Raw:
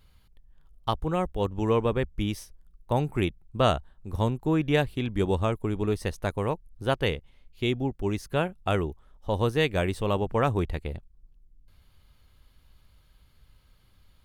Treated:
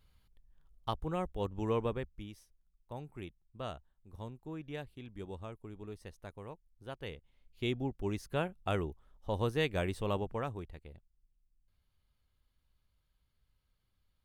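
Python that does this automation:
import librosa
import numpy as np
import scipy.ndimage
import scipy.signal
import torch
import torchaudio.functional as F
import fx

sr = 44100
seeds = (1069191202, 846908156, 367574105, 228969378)

y = fx.gain(x, sr, db=fx.line((1.87, -8.5), (2.29, -19.0), (6.94, -19.0), (7.66, -7.5), (10.16, -7.5), (10.66, -18.0)))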